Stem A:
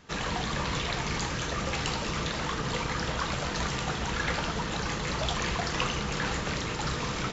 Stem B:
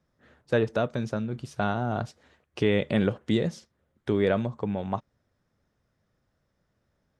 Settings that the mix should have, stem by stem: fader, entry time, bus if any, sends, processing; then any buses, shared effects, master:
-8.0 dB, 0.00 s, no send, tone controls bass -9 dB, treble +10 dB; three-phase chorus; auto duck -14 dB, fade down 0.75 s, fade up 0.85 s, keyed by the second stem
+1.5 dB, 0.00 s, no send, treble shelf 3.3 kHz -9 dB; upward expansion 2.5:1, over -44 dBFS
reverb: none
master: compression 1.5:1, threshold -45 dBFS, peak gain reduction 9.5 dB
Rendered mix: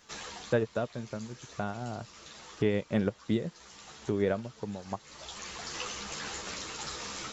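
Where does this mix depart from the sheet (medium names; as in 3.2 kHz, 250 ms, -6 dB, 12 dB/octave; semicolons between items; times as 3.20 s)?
stem A -8.0 dB -> -0.5 dB; stem B +1.5 dB -> +10.5 dB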